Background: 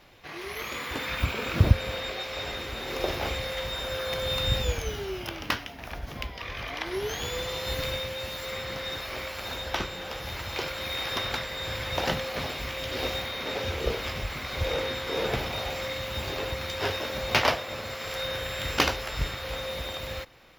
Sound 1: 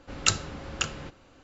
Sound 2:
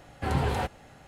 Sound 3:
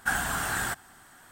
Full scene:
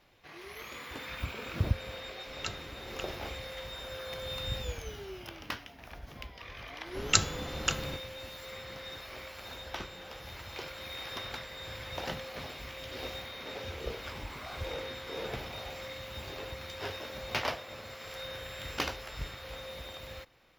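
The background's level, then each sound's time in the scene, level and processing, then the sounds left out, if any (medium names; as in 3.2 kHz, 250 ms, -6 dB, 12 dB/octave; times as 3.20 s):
background -9.5 dB
2.18 s: add 1 -12.5 dB + low-pass 4.8 kHz
6.87 s: add 1 -0.5 dB
14.00 s: add 3 -2.5 dB + talking filter a-u 2 Hz
not used: 2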